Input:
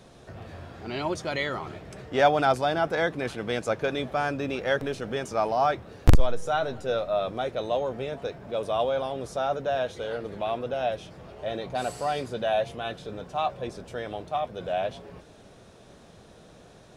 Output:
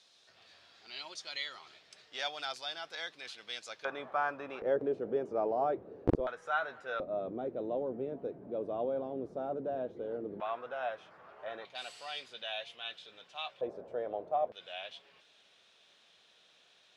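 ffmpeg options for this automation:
-af "asetnsamples=n=441:p=0,asendcmd='3.85 bandpass f 1100;4.62 bandpass f 400;6.27 bandpass f 1500;7 bandpass f 310;10.4 bandpass f 1300;11.65 bandpass f 3200;13.61 bandpass f 560;14.52 bandpass f 3200',bandpass=f=4300:t=q:w=1.9:csg=0"

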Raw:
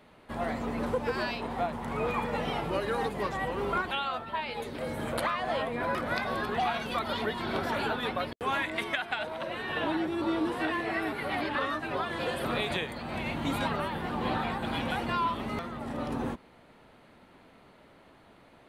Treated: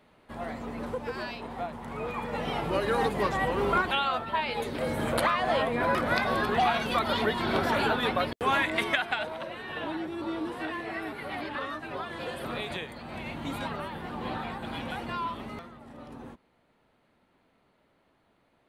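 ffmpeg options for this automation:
-af "volume=1.68,afade=t=in:st=2.15:d=0.89:silence=0.375837,afade=t=out:st=8.95:d=0.6:silence=0.375837,afade=t=out:st=15.4:d=0.41:silence=0.421697"

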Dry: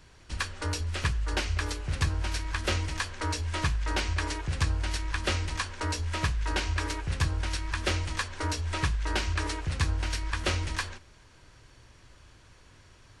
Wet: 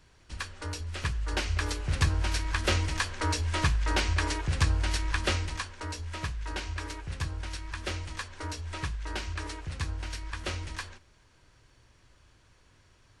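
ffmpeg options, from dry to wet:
-af "volume=1.26,afade=t=in:st=0.85:d=1.09:silence=0.446684,afade=t=out:st=5.14:d=0.6:silence=0.398107"

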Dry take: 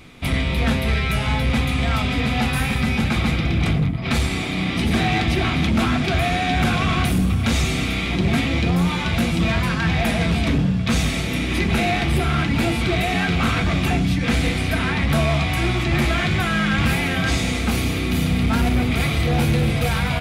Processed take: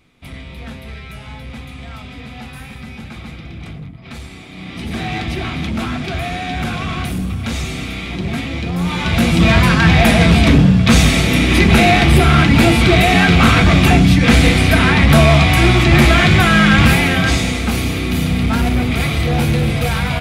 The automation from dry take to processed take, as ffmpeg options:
-af "volume=2.99,afade=t=in:st=4.49:d=0.66:silence=0.334965,afade=t=in:st=8.72:d=0.86:silence=0.251189,afade=t=out:st=16.7:d=0.87:silence=0.473151"

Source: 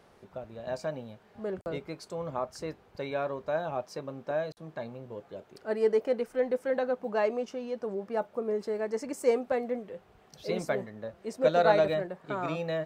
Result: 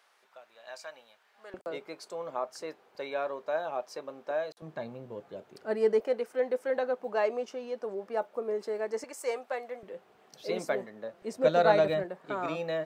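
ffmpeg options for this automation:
-af "asetnsamples=n=441:p=0,asendcmd='1.54 highpass f 390;4.62 highpass f 110;6 highpass f 330;9.04 highpass f 710;9.83 highpass f 250;11.22 highpass f 85;12.04 highpass f 220',highpass=1200"

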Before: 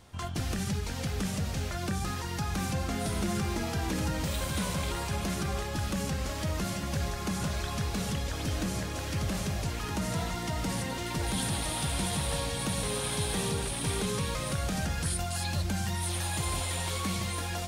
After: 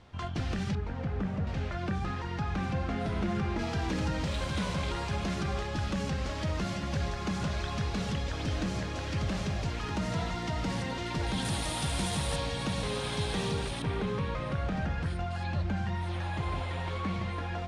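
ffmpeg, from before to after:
-af "asetnsamples=n=441:p=0,asendcmd='0.75 lowpass f 1500;1.47 lowpass f 2700;3.59 lowpass f 4800;11.45 lowpass f 8500;12.36 lowpass f 5100;13.82 lowpass f 2200',lowpass=3800"

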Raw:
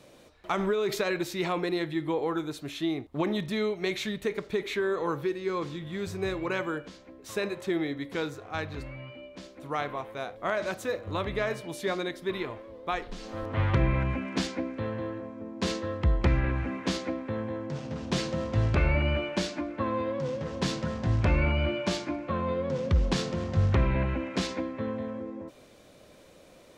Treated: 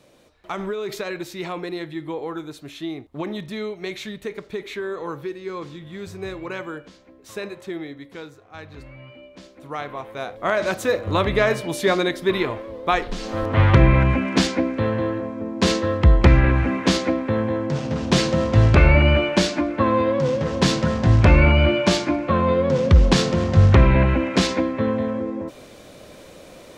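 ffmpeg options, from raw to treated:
-af "volume=8.41,afade=t=out:st=7.43:d=1.05:silence=0.421697,afade=t=in:st=8.48:d=0.65:silence=0.354813,afade=t=in:st=9.85:d=1.19:silence=0.316228"

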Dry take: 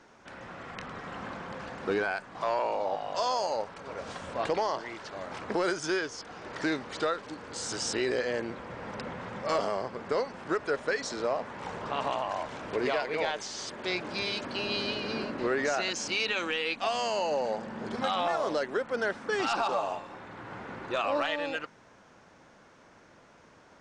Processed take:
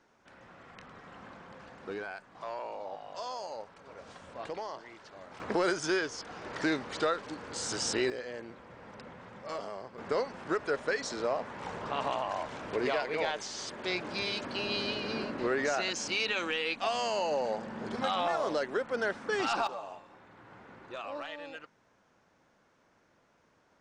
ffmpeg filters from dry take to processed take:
-af "asetnsamples=n=441:p=0,asendcmd='5.4 volume volume 0dB;8.1 volume volume -10dB;9.98 volume volume -1.5dB;19.67 volume volume -11dB',volume=0.316"

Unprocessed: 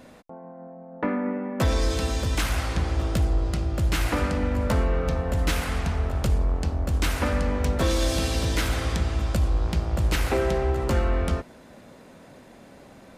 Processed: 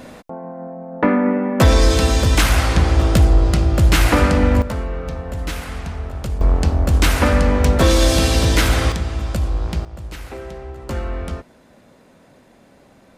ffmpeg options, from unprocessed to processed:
-af "asetnsamples=n=441:p=0,asendcmd='4.62 volume volume -1.5dB;6.41 volume volume 9.5dB;8.92 volume volume 2.5dB;9.85 volume volume -9dB;10.89 volume volume -2dB',volume=3.35"

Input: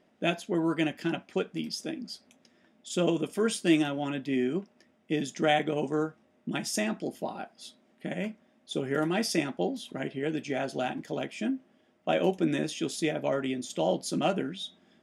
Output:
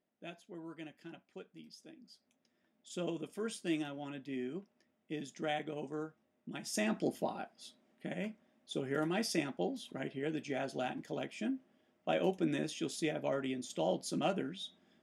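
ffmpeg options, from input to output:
-af "afade=t=in:st=1.98:d=0.93:silence=0.398107,afade=t=in:st=6.62:d=0.45:silence=0.251189,afade=t=out:st=7.07:d=0.45:silence=0.473151"

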